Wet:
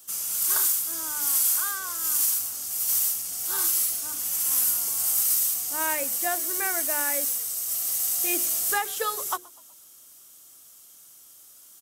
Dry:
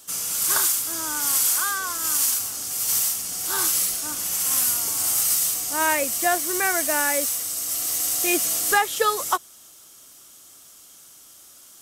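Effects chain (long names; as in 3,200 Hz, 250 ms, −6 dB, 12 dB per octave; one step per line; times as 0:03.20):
high-shelf EQ 11,000 Hz +12 dB
mains-hum notches 60/120/180/240/300/360/420/480 Hz
echo with shifted repeats 124 ms, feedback 49%, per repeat −49 Hz, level −23.5 dB
level −7.5 dB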